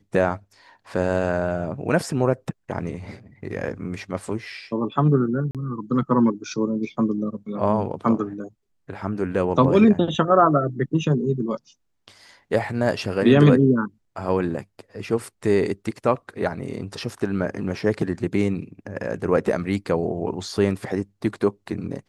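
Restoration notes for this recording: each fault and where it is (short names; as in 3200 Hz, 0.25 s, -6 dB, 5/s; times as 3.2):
5.51–5.55 gap 37 ms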